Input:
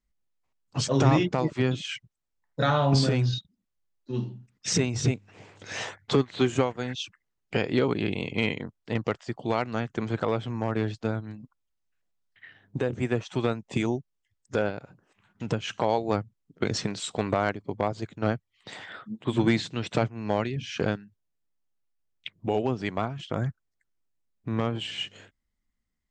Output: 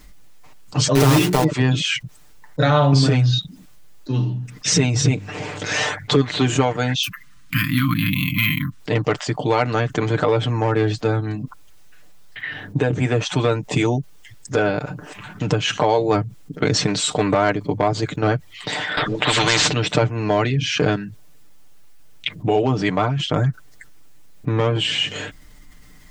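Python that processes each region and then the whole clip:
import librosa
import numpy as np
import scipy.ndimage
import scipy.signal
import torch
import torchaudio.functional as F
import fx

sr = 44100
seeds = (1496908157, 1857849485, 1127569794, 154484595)

y = fx.chain(x, sr, fx.block_float(bits=3),
    fx.peak_eq(hz=410.0, db=7.0, octaves=0.28),
    fx.hum_notches(base_hz=60, count=7), at=(0.95, 1.45))
y = fx.chain(y, sr, fx.median_filter(points=3),
    fx.brickwall_bandstop(low_hz=290.0, high_hz=1000.0),
    fx.resample_bad(factor=3, down='none', up='hold'), at=(7.03, 8.8))
y = fx.chain(y, sr, fx.lowpass(hz=5100.0, slope=12),
    fx.spectral_comp(ratio=4.0), at=(18.97, 19.73))
y = y + 0.72 * np.pad(y, (int(6.7 * sr / 1000.0), 0))[:len(y)]
y = fx.env_flatten(y, sr, amount_pct=50)
y = y * 10.0 ** (1.5 / 20.0)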